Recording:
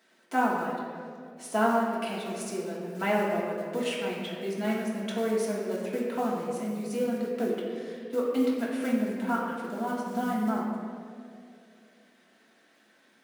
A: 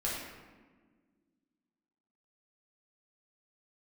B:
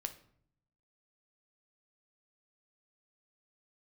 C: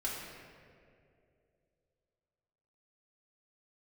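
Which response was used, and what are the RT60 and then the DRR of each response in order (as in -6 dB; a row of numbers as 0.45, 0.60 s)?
C; 1.5, 0.60, 2.5 s; -6.5, 7.0, -6.5 dB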